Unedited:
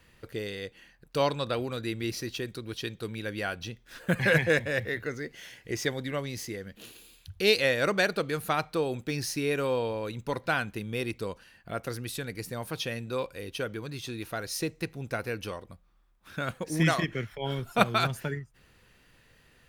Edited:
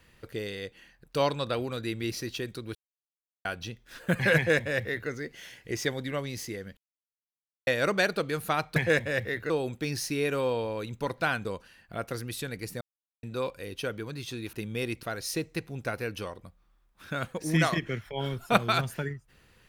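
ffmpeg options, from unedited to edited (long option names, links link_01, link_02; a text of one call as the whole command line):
ffmpeg -i in.wav -filter_complex "[0:a]asplit=12[link_01][link_02][link_03][link_04][link_05][link_06][link_07][link_08][link_09][link_10][link_11][link_12];[link_01]atrim=end=2.75,asetpts=PTS-STARTPTS,afade=type=out:start_time=2.746:duration=0.004:curve=hsin[link_13];[link_02]atrim=start=2.75:end=3.45,asetpts=PTS-STARTPTS,volume=0[link_14];[link_03]atrim=start=3.45:end=6.77,asetpts=PTS-STARTPTS,afade=type=in:duration=0.004:curve=hsin,afade=type=out:start_time=3.316:duration=0.004:curve=hsin[link_15];[link_04]atrim=start=6.77:end=7.67,asetpts=PTS-STARTPTS,volume=0[link_16];[link_05]atrim=start=7.67:end=8.762,asetpts=PTS-STARTPTS,afade=type=in:duration=0.004:curve=hsin[link_17];[link_06]atrim=start=4.358:end=5.102[link_18];[link_07]atrim=start=8.758:end=10.712[link_19];[link_08]atrim=start=11.208:end=12.57,asetpts=PTS-STARTPTS,afade=type=out:start_time=1.358:duration=0.004:curve=hsin[link_20];[link_09]atrim=start=12.57:end=12.99,asetpts=PTS-STARTPTS,volume=0[link_21];[link_10]atrim=start=12.99:end=14.292,asetpts=PTS-STARTPTS,afade=type=in:duration=0.004:curve=hsin[link_22];[link_11]atrim=start=10.708:end=11.212[link_23];[link_12]atrim=start=14.288[link_24];[link_13][link_14][link_15][link_16][link_17]concat=n=5:v=0:a=1[link_25];[link_25][link_18]acrossfade=duration=0.004:curve1=hsin:curve2=hsin[link_26];[link_26][link_19]acrossfade=duration=0.004:curve1=hsin:curve2=hsin[link_27];[link_20][link_21][link_22]concat=n=3:v=0:a=1[link_28];[link_27][link_28]acrossfade=duration=0.004:curve1=hsin:curve2=hsin[link_29];[link_29][link_23]acrossfade=duration=0.004:curve1=hsin:curve2=hsin[link_30];[link_30][link_24]acrossfade=duration=0.004:curve1=hsin:curve2=hsin" out.wav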